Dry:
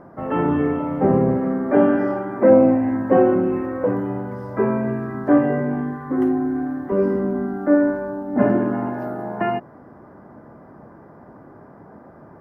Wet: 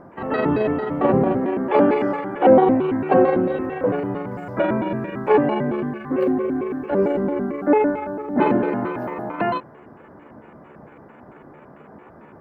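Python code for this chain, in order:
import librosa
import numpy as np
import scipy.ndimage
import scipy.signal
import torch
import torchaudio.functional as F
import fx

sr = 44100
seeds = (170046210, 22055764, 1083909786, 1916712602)

y = fx.pitch_trill(x, sr, semitones=6.5, every_ms=112)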